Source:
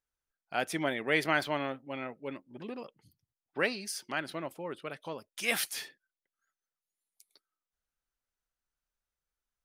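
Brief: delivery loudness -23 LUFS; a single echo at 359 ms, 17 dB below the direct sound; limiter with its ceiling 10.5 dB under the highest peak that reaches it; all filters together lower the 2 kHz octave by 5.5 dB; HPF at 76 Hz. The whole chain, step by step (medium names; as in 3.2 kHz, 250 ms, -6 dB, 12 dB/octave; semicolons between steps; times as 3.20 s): high-pass 76 Hz; peaking EQ 2 kHz -7 dB; peak limiter -25 dBFS; delay 359 ms -17 dB; trim +16.5 dB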